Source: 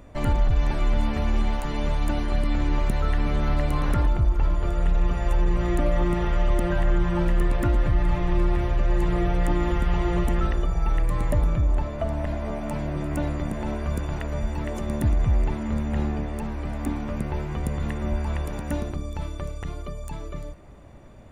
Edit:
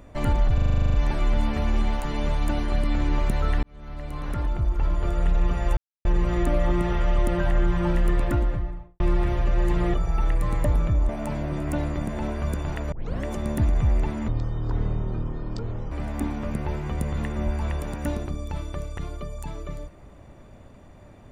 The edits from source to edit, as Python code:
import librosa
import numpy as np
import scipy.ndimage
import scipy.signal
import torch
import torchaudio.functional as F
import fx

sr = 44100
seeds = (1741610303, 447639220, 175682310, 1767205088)

y = fx.studio_fade_out(x, sr, start_s=7.52, length_s=0.8)
y = fx.edit(y, sr, fx.stutter(start_s=0.54, slice_s=0.04, count=11),
    fx.fade_in_span(start_s=3.23, length_s=1.45),
    fx.insert_silence(at_s=5.37, length_s=0.28),
    fx.cut(start_s=9.26, length_s=1.36),
    fx.cut(start_s=11.77, length_s=0.76),
    fx.tape_start(start_s=14.36, length_s=0.32),
    fx.speed_span(start_s=15.72, length_s=0.85, speed=0.52), tone=tone)